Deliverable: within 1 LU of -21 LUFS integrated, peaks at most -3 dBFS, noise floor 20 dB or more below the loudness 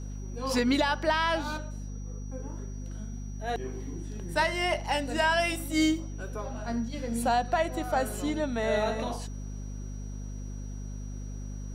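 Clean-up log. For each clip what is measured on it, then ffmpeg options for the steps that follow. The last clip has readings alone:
hum 50 Hz; highest harmonic 250 Hz; hum level -35 dBFS; steady tone 5.8 kHz; tone level -54 dBFS; loudness -31.0 LUFS; peak level -14.5 dBFS; loudness target -21.0 LUFS
-> -af "bandreject=f=50:t=h:w=4,bandreject=f=100:t=h:w=4,bandreject=f=150:t=h:w=4,bandreject=f=200:t=h:w=4,bandreject=f=250:t=h:w=4"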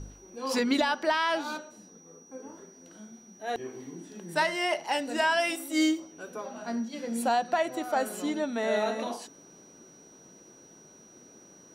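hum not found; steady tone 5.8 kHz; tone level -54 dBFS
-> -af "bandreject=f=5800:w=30"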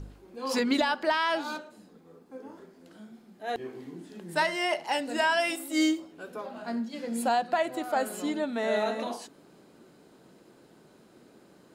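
steady tone not found; loudness -29.0 LUFS; peak level -14.5 dBFS; loudness target -21.0 LUFS
-> -af "volume=2.51"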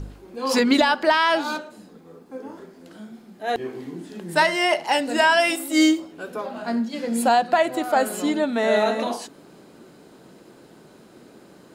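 loudness -21.0 LUFS; peak level -6.5 dBFS; noise floor -50 dBFS

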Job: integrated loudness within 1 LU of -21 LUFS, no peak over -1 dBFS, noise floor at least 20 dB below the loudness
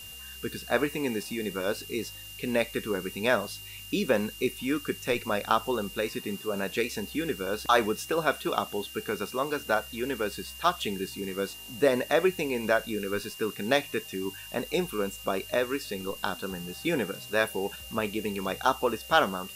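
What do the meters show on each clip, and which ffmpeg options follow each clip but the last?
steady tone 2.8 kHz; tone level -44 dBFS; noise floor -44 dBFS; noise floor target -50 dBFS; loudness -29.5 LUFS; peak level -8.0 dBFS; loudness target -21.0 LUFS
-> -af "bandreject=f=2800:w=30"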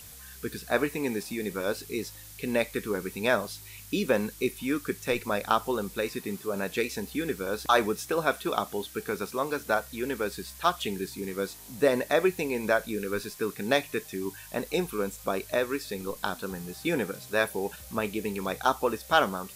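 steady tone not found; noise floor -47 dBFS; noise floor target -50 dBFS
-> -af "afftdn=nr=6:nf=-47"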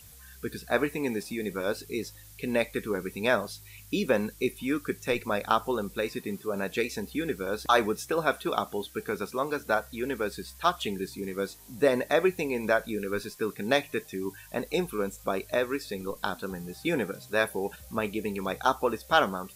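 noise floor -50 dBFS; loudness -30.0 LUFS; peak level -8.0 dBFS; loudness target -21.0 LUFS
-> -af "volume=2.82,alimiter=limit=0.891:level=0:latency=1"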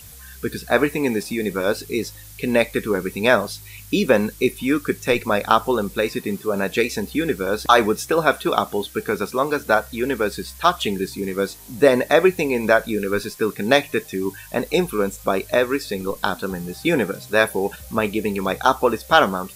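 loudness -21.0 LUFS; peak level -1.0 dBFS; noise floor -41 dBFS

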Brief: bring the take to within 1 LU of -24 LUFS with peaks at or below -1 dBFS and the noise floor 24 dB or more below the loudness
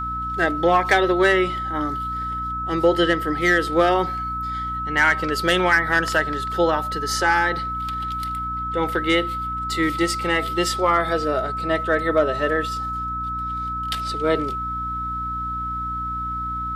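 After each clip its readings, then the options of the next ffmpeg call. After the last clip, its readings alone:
hum 60 Hz; highest harmonic 300 Hz; hum level -31 dBFS; steady tone 1.3 kHz; tone level -25 dBFS; loudness -21.5 LUFS; peak level -6.5 dBFS; loudness target -24.0 LUFS
-> -af "bandreject=f=60:t=h:w=6,bandreject=f=120:t=h:w=6,bandreject=f=180:t=h:w=6,bandreject=f=240:t=h:w=6,bandreject=f=300:t=h:w=6"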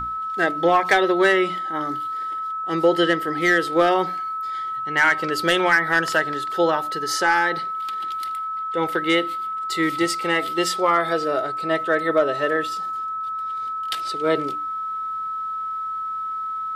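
hum not found; steady tone 1.3 kHz; tone level -25 dBFS
-> -af "bandreject=f=1300:w=30"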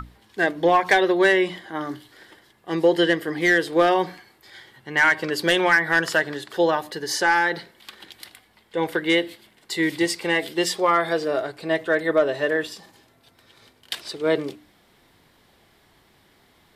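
steady tone not found; loudness -21.5 LUFS; peak level -8.0 dBFS; loudness target -24.0 LUFS
-> -af "volume=0.75"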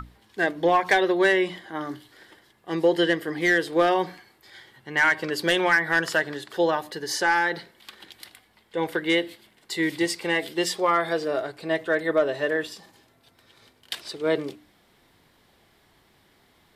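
loudness -24.0 LUFS; peak level -10.5 dBFS; noise floor -62 dBFS

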